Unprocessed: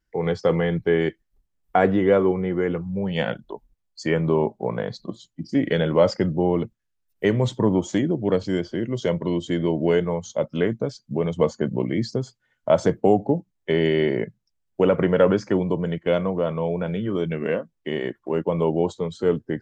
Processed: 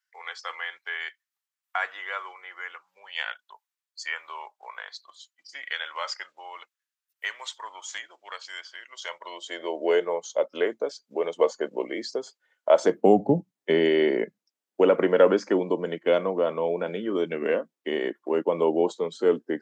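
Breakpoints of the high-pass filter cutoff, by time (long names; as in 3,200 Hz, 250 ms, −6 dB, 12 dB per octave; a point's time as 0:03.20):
high-pass filter 24 dB per octave
0:08.92 1,100 Hz
0:09.91 390 Hz
0:12.71 390 Hz
0:13.32 120 Hz
0:13.90 260 Hz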